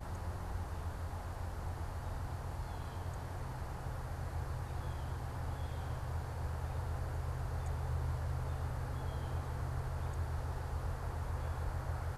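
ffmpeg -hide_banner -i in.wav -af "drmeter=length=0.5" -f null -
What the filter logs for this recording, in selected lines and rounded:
Channel 1: DR: 7.0
Overall DR: 7.0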